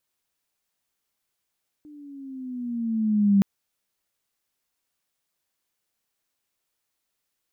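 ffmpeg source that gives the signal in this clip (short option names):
-f lavfi -i "aevalsrc='pow(10,(-13.5+29.5*(t/1.57-1))/20)*sin(2*PI*302*1.57/(-7.5*log(2)/12)*(exp(-7.5*log(2)/12*t/1.57)-1))':d=1.57:s=44100"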